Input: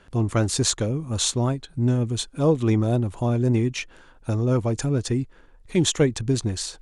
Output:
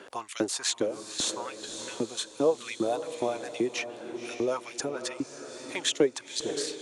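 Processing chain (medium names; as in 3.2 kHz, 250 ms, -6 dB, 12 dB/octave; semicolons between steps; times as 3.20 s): LFO high-pass saw up 2.5 Hz 290–4500 Hz; echo that smears into a reverb 539 ms, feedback 46%, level -13 dB; three bands compressed up and down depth 40%; trim -5 dB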